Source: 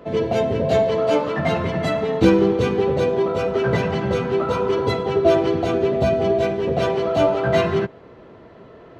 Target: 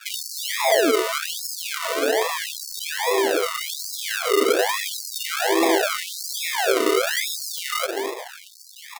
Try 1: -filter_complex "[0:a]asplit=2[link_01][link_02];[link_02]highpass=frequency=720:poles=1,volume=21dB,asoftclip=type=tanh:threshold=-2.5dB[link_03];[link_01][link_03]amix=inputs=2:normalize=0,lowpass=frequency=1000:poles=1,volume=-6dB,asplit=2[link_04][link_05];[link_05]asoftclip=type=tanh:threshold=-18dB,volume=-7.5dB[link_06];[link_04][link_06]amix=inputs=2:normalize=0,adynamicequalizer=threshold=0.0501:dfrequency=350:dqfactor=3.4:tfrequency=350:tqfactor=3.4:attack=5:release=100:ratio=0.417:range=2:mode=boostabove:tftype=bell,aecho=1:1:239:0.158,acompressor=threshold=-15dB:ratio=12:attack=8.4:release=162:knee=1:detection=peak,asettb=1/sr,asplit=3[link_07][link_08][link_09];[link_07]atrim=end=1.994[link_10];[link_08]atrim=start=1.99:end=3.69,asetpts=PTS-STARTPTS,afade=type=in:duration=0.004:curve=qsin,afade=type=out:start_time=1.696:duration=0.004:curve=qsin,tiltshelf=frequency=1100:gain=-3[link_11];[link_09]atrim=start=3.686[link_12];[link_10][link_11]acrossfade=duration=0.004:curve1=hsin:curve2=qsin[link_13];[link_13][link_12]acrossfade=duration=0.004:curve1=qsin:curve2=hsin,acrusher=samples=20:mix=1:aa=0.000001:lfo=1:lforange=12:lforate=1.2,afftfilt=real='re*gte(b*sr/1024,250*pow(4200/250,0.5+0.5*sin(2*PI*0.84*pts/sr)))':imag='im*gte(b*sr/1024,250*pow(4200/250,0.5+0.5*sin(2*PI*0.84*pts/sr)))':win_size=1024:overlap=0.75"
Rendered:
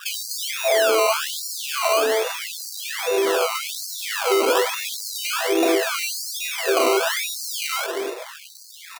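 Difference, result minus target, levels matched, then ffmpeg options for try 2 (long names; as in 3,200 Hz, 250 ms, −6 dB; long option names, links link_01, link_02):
sample-and-hold swept by an LFO: distortion −14 dB
-filter_complex "[0:a]asplit=2[link_01][link_02];[link_02]highpass=frequency=720:poles=1,volume=21dB,asoftclip=type=tanh:threshold=-2.5dB[link_03];[link_01][link_03]amix=inputs=2:normalize=0,lowpass=frequency=1000:poles=1,volume=-6dB,asplit=2[link_04][link_05];[link_05]asoftclip=type=tanh:threshold=-18dB,volume=-7.5dB[link_06];[link_04][link_06]amix=inputs=2:normalize=0,adynamicequalizer=threshold=0.0501:dfrequency=350:dqfactor=3.4:tfrequency=350:tqfactor=3.4:attack=5:release=100:ratio=0.417:range=2:mode=boostabove:tftype=bell,aecho=1:1:239:0.158,acompressor=threshold=-15dB:ratio=12:attack=8.4:release=162:knee=1:detection=peak,asettb=1/sr,asplit=3[link_07][link_08][link_09];[link_07]atrim=end=1.994[link_10];[link_08]atrim=start=1.99:end=3.69,asetpts=PTS-STARTPTS,afade=type=in:duration=0.004:curve=qsin,afade=type=out:start_time=1.696:duration=0.004:curve=qsin,tiltshelf=frequency=1100:gain=-3[link_11];[link_09]atrim=start=3.686[link_12];[link_10][link_11]acrossfade=duration=0.004:curve1=hsin:curve2=qsin[link_13];[link_13][link_12]acrossfade=duration=0.004:curve1=qsin:curve2=hsin,acrusher=samples=42:mix=1:aa=0.000001:lfo=1:lforange=25.2:lforate=1.2,afftfilt=real='re*gte(b*sr/1024,250*pow(4200/250,0.5+0.5*sin(2*PI*0.84*pts/sr)))':imag='im*gte(b*sr/1024,250*pow(4200/250,0.5+0.5*sin(2*PI*0.84*pts/sr)))':win_size=1024:overlap=0.75"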